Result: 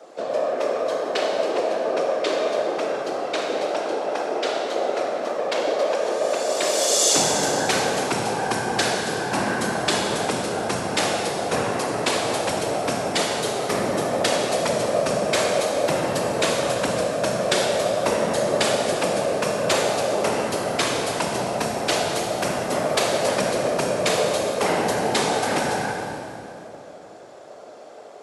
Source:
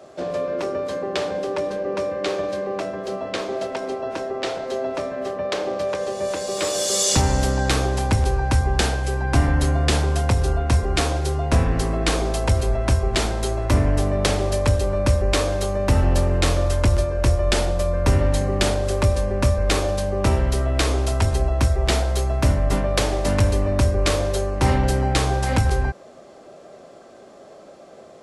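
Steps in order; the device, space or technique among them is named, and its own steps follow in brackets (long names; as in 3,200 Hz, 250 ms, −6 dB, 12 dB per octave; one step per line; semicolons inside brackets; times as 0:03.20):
whispering ghost (random phases in short frames; high-pass filter 370 Hz 12 dB per octave; convolution reverb RT60 2.8 s, pre-delay 29 ms, DRR 0.5 dB)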